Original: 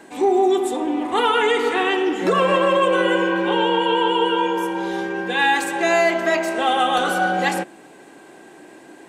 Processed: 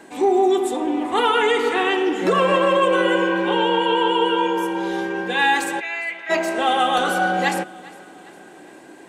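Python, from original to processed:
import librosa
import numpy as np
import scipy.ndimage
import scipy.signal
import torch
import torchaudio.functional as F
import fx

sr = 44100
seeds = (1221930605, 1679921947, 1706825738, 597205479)

y = fx.bandpass_q(x, sr, hz=2300.0, q=3.9, at=(5.79, 6.29), fade=0.02)
y = fx.echo_feedback(y, sr, ms=405, feedback_pct=52, wet_db=-22)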